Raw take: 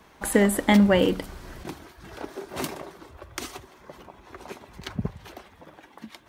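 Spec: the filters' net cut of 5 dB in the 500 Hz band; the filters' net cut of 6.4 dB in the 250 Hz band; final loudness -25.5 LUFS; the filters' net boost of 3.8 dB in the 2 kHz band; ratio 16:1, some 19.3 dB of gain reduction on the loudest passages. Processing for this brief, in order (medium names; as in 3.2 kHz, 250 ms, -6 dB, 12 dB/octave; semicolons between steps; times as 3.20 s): peaking EQ 250 Hz -8 dB; peaking EQ 500 Hz -4 dB; peaking EQ 2 kHz +4.5 dB; compression 16:1, threshold -36 dBFS; trim +17.5 dB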